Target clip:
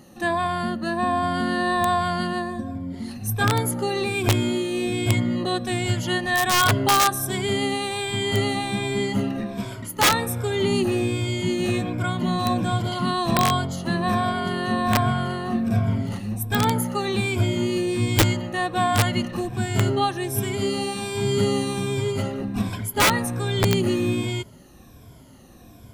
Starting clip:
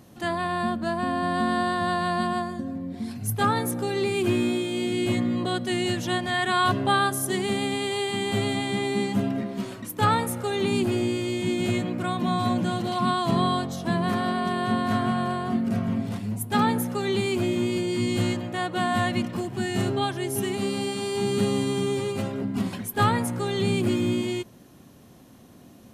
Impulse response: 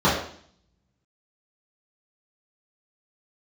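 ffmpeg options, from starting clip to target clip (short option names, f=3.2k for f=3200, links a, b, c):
-af "afftfilt=real='re*pow(10,11/40*sin(2*PI*(1.7*log(max(b,1)*sr/1024/100)/log(2)-(-1.3)*(pts-256)/sr)))':imag='im*pow(10,11/40*sin(2*PI*(1.7*log(max(b,1)*sr/1024/100)/log(2)-(-1.3)*(pts-256)/sr)))':win_size=1024:overlap=0.75,asubboost=boost=3.5:cutoff=96,aeval=exprs='(mod(3.98*val(0)+1,2)-1)/3.98':c=same,volume=1.5dB"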